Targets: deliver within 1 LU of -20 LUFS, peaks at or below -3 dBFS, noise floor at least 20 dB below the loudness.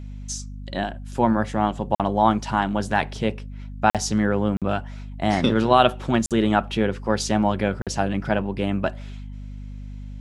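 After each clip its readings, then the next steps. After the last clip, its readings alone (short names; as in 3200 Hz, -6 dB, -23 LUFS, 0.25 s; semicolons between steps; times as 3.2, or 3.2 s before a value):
dropouts 5; longest dropout 47 ms; hum 50 Hz; harmonics up to 250 Hz; hum level -32 dBFS; loudness -23.0 LUFS; peak -2.0 dBFS; loudness target -20.0 LUFS
-> interpolate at 1.95/3.9/4.57/6.26/7.82, 47 ms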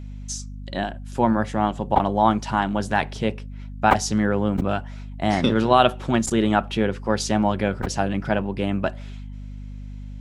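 dropouts 0; hum 50 Hz; harmonics up to 250 Hz; hum level -32 dBFS
-> de-hum 50 Hz, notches 5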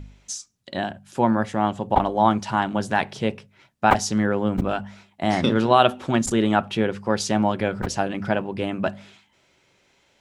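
hum none; loudness -23.0 LUFS; peak -2.0 dBFS; loudness target -20.0 LUFS
-> gain +3 dB; limiter -3 dBFS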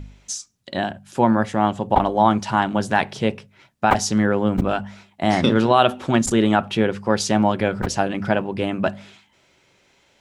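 loudness -20.5 LUFS; peak -3.0 dBFS; noise floor -60 dBFS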